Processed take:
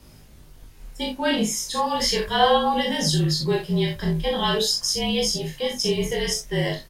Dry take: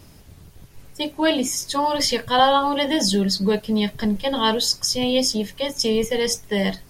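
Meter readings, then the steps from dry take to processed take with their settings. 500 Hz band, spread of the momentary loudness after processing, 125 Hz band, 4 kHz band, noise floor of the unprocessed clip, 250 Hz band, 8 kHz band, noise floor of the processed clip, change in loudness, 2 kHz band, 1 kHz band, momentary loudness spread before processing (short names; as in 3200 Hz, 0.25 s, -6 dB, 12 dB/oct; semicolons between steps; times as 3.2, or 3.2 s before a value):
-2.0 dB, 6 LU, +5.0 dB, -1.5 dB, -47 dBFS, -4.0 dB, -1.5 dB, -48 dBFS, -2.0 dB, -1.0 dB, -2.5 dB, 6 LU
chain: early reflections 40 ms -4.5 dB, 61 ms -9 dB; frequency shift -39 Hz; chorus 0.36 Hz, delay 19.5 ms, depth 4.4 ms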